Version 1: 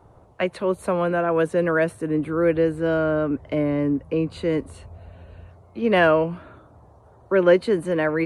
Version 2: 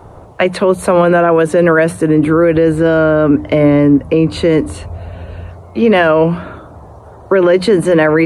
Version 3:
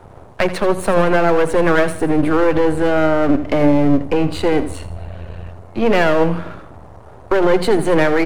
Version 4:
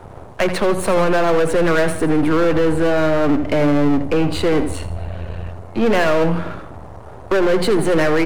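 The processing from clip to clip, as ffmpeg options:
-af "bandreject=f=60:t=h:w=6,bandreject=f=120:t=h:w=6,bandreject=f=180:t=h:w=6,bandreject=f=240:t=h:w=6,bandreject=f=300:t=h:w=6,alimiter=level_in=17dB:limit=-1dB:release=50:level=0:latency=1,volume=-1dB"
-af "aeval=exprs='if(lt(val(0),0),0.251*val(0),val(0))':c=same,aecho=1:1:82|164|246|328:0.2|0.0818|0.0335|0.0138,volume=-1dB"
-af "asoftclip=type=tanh:threshold=-13dB,volume=3.5dB"

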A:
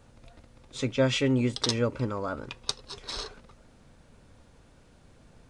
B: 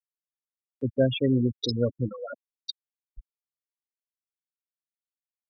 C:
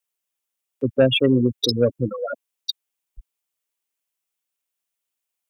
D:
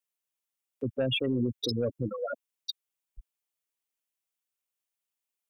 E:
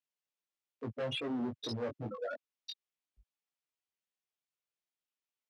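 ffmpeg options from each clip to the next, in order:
-filter_complex "[0:a]afftfilt=real='re*gte(hypot(re,im),0.141)':imag='im*gte(hypot(re,im),0.141)':win_size=1024:overlap=0.75,acrossover=split=110|1500[a][b][c];[c]acompressor=mode=upward:threshold=-52dB:ratio=2.5[d];[a][b][d]amix=inputs=3:normalize=0,volume=2dB"
-filter_complex "[0:a]highshelf=f=3.9k:g=-6.5,acrossover=split=320[a][b];[b]aeval=exprs='0.211*sin(PI/2*1.41*val(0)/0.211)':c=same[c];[a][c]amix=inputs=2:normalize=0,aexciter=amount=2.2:drive=2.5:freq=2.4k,volume=3dB"
-af "alimiter=limit=-15dB:level=0:latency=1:release=15,volume=-6dB"
-af "asoftclip=type=hard:threshold=-30dB,flanger=delay=17.5:depth=3.4:speed=2.4,highpass=100,lowpass=5.6k,volume=-1dB"

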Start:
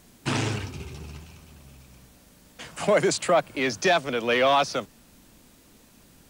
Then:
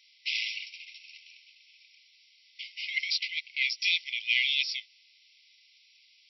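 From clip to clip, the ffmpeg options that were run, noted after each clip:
-af "afftfilt=real='re*between(b*sr/4096,2000,5700)':imag='im*between(b*sr/4096,2000,5700)':win_size=4096:overlap=0.75,volume=3dB"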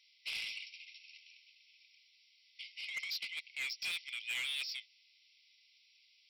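-af "asoftclip=type=tanh:threshold=-27dB,volume=-6.5dB"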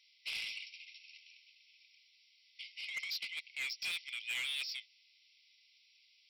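-af anull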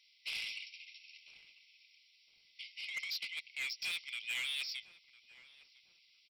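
-filter_complex "[0:a]asplit=2[a][b];[b]adelay=1004,lowpass=f=800:p=1,volume=-12dB,asplit=2[c][d];[d]adelay=1004,lowpass=f=800:p=1,volume=0.44,asplit=2[e][f];[f]adelay=1004,lowpass=f=800:p=1,volume=0.44,asplit=2[g][h];[h]adelay=1004,lowpass=f=800:p=1,volume=0.44[i];[a][c][e][g][i]amix=inputs=5:normalize=0"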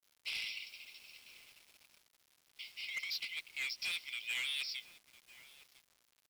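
-af "acrusher=bits=9:mix=0:aa=0.000001"

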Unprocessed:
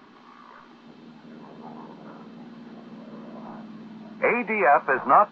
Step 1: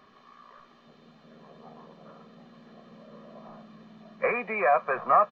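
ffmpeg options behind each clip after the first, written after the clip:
-af "aecho=1:1:1.7:0.63,volume=-6.5dB"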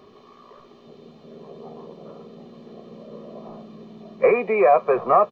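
-af "equalizer=f=100:t=o:w=0.67:g=8,equalizer=f=400:t=o:w=0.67:g=11,equalizer=f=1.6k:t=o:w=0.67:g=-11,volume=5.5dB"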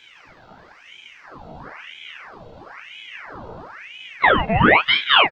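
-filter_complex "[0:a]asplit=2[a][b];[b]adelay=37,volume=-4.5dB[c];[a][c]amix=inputs=2:normalize=0,aeval=exprs='val(0)*sin(2*PI*1500*n/s+1500*0.85/1*sin(2*PI*1*n/s))':c=same,volume=3.5dB"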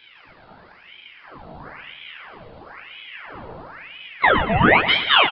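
-filter_complex "[0:a]asplit=2[a][b];[b]aecho=0:1:115|230|345|460|575:0.282|0.138|0.0677|0.0332|0.0162[c];[a][c]amix=inputs=2:normalize=0,aresample=11025,aresample=44100,volume=-1dB"

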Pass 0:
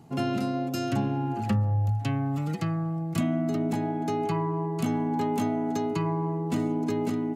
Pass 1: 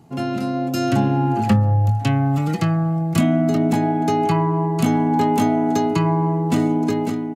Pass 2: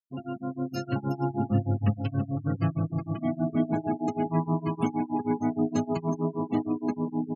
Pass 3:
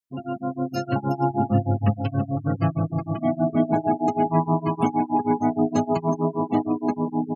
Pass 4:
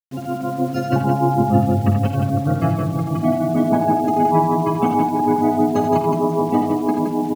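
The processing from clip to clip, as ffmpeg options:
-filter_complex "[0:a]asplit=2[a][b];[b]adelay=23,volume=-12dB[c];[a][c]amix=inputs=2:normalize=0,dynaudnorm=f=300:g=5:m=7.5dB,volume=2dB"
-af "aecho=1:1:370|703|1003|1272|1515:0.631|0.398|0.251|0.158|0.1,tremolo=f=6.4:d=0.92,afftfilt=real='re*gte(hypot(re,im),0.0562)':imag='im*gte(hypot(re,im),0.0562)':win_size=1024:overlap=0.75,volume=-7.5dB"
-af "adynamicequalizer=threshold=0.00562:dfrequency=760:dqfactor=1.3:tfrequency=760:tqfactor=1.3:attack=5:release=100:ratio=0.375:range=3.5:mode=boostabove:tftype=bell,volume=3.5dB"
-af "lowpass=f=2.9k:p=1,acrusher=bits=7:mix=0:aa=0.000001,aecho=1:1:52|82|169:0.316|0.501|0.531,volume=4dB"

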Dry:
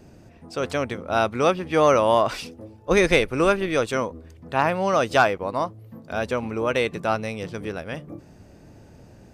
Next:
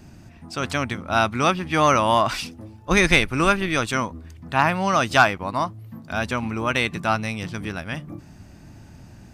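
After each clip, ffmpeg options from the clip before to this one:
-af "equalizer=f=480:t=o:w=0.82:g=-13.5,volume=5dB"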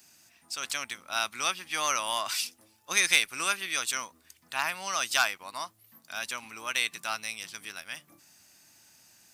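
-af "aderivative,volume=4dB"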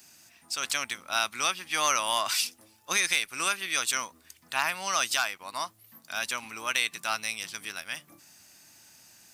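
-af "alimiter=limit=-14.5dB:level=0:latency=1:release=394,volume=3.5dB"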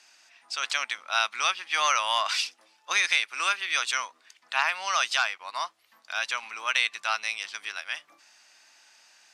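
-af "highpass=730,lowpass=4.5k,volume=3.5dB"

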